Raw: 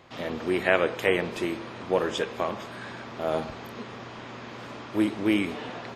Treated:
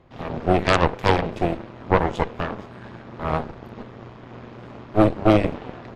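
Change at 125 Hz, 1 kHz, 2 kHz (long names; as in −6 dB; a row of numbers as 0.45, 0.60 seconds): +13.5, +9.5, +1.0 decibels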